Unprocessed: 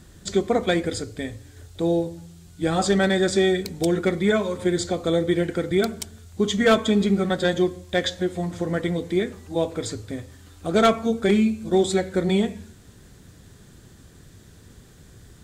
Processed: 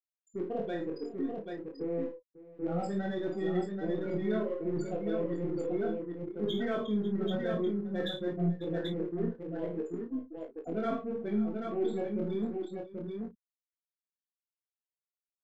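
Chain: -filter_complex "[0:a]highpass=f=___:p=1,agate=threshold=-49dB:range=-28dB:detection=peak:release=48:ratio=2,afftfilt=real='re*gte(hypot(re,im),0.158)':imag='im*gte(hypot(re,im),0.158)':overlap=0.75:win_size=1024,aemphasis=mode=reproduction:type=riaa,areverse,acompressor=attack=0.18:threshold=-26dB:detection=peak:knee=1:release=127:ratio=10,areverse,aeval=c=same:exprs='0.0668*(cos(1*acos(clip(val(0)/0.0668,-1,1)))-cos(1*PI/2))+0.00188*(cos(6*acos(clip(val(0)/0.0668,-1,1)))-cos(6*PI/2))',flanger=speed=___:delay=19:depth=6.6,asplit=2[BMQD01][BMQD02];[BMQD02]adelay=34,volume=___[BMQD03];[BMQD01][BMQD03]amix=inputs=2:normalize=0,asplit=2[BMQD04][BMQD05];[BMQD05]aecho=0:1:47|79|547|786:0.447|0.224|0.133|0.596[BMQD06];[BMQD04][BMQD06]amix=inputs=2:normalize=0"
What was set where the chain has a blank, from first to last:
350, 0.62, -9dB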